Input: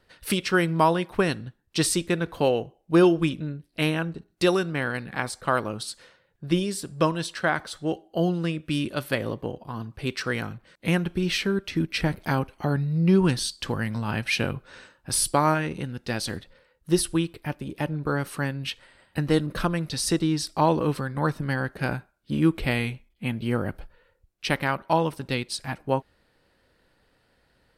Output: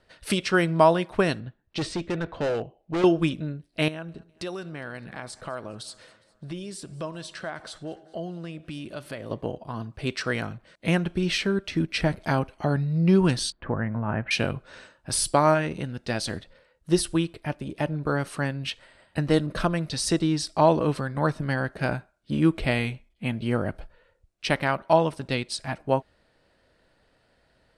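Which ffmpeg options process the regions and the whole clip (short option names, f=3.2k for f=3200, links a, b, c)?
-filter_complex "[0:a]asettb=1/sr,asplit=3[a][b][c];[a]atrim=end=1.404[d];[b]atrim=start=1.4:end=3.04,asetpts=PTS-STARTPTS,afade=t=in:d=0.004:c=qsin,afade=t=out:st=1.636:d=0.004:c=qsin,lowpass=3.4k,volume=24dB,asoftclip=hard,volume=-24dB[e];[c]atrim=start=3.036[f];[d][e]acrossfade=d=0.004:c1=hsin:c2=qsin[g];[g][f]acrossfade=d=0.004:c1=qsin:c2=hsin,asettb=1/sr,asplit=3[h][i][j];[h]atrim=end=3.884[k];[i]atrim=start=3.88:end=9.31,asetpts=PTS-STARTPTS,afade=t=in:d=0.004:c=qsin,afade=t=out:st=5.426:d=0.004:c=qsin,acompressor=threshold=-37dB:ratio=2.5:attack=3.2:release=140:knee=1:detection=peak,aecho=1:1:205|410|615|820:0.0708|0.0411|0.0238|0.0138,atrim=end_sample=239463[l];[j]atrim=start=9.306[m];[k][l]acrossfade=d=0.004:c1=hsin:c2=qsin[n];[n][m]acrossfade=d=0.004:c1=qsin:c2=hsin,asettb=1/sr,asplit=3[o][p][q];[o]atrim=end=13.524[r];[p]atrim=start=13.52:end=14.31,asetpts=PTS-STARTPTS,afade=t=in:d=0.004:c=qsin,afade=t=out:st=0.786:d=0.004:c=qsin,lowpass=f=1.9k:w=0.5412,lowpass=f=1.9k:w=1.3066,aemphasis=mode=reproduction:type=50fm[s];[q]atrim=start=14.306[t];[r][s]acrossfade=d=0.004:c1=hsin:c2=qsin[u];[u][t]acrossfade=d=0.004:c1=qsin:c2=hsin,lowpass=f=10k:w=0.5412,lowpass=f=10k:w=1.3066,equalizer=f=640:w=6.5:g=7.5"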